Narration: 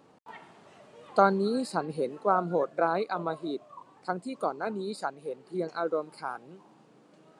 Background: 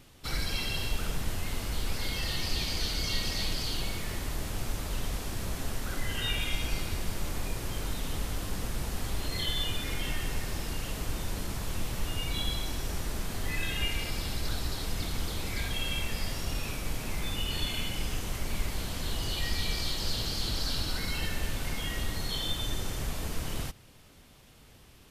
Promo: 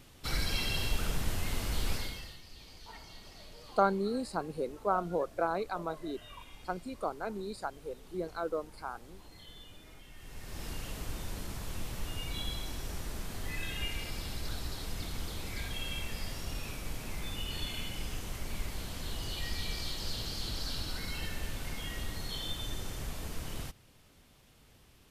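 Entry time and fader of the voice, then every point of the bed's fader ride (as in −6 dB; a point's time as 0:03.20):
2.60 s, −5.0 dB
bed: 0:01.94 −0.5 dB
0:02.42 −21 dB
0:10.10 −21 dB
0:10.65 −5.5 dB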